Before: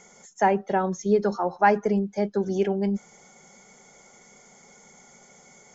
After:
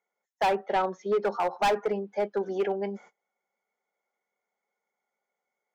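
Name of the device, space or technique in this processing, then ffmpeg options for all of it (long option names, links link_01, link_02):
walkie-talkie: -filter_complex "[0:a]highpass=460,lowpass=2600,asoftclip=type=hard:threshold=-22.5dB,agate=range=-30dB:threshold=-51dB:ratio=16:detection=peak,asettb=1/sr,asplit=3[link_01][link_02][link_03];[link_01]atrim=end=0.554[link_04];[link_02]atrim=start=0.55:end=1.25,asetpts=PTS-STARTPTS,afade=type=in:duration=0.004:curve=qsin,afade=type=out:start_time=0.696:duration=0.004:curve=qsin,lowpass=6000[link_05];[link_03]atrim=start=1.246[link_06];[link_04][link_05]acrossfade=duration=0.004:curve1=hsin:curve2=qsin[link_07];[link_07][link_06]acrossfade=duration=0.004:curve1=qsin:curve2=hsin,volume=2dB"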